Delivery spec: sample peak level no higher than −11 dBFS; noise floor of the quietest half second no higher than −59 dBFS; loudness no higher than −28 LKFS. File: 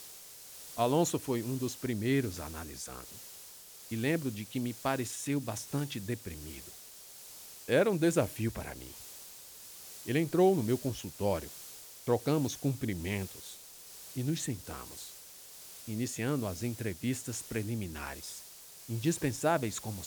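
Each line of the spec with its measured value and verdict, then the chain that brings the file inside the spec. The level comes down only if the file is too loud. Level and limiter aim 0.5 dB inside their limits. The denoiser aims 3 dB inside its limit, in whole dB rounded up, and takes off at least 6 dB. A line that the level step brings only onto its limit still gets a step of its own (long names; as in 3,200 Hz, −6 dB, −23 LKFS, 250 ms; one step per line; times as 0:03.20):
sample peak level −15.5 dBFS: in spec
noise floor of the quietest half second −51 dBFS: out of spec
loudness −33.5 LKFS: in spec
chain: broadband denoise 11 dB, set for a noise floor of −51 dBFS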